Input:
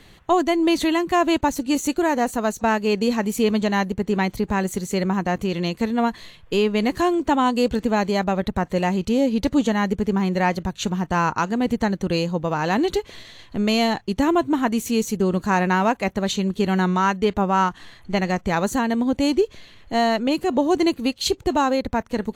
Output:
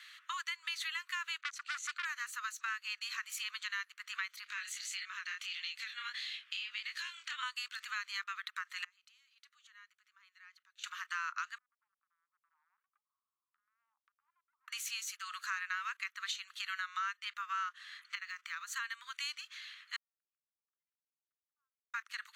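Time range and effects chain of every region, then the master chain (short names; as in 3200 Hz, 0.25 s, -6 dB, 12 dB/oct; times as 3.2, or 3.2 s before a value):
1.41–2.05 LPF 7200 Hz + core saturation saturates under 2400 Hz
4.44–7.43 weighting filter D + compressor 2.5:1, threshold -30 dBFS + chorus 1.6 Hz, delay 19.5 ms, depth 7.8 ms
8.84–10.84 compressor 5:1, threshold -20 dBFS + flipped gate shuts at -24 dBFS, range -24 dB
11.58–14.68 Gaussian blur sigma 16 samples + compressor 5:1, threshold -37 dBFS
18.15–18.76 compressor, threshold -26 dBFS + decimation joined by straight lines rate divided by 2×
19.96–21.94 Butterworth band-pass 180 Hz, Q 4.8 + level quantiser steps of 17 dB
whole clip: steep high-pass 1200 Hz 72 dB/oct; high shelf 6500 Hz -9.5 dB; compressor 3:1, threshold -40 dBFS; gain +1 dB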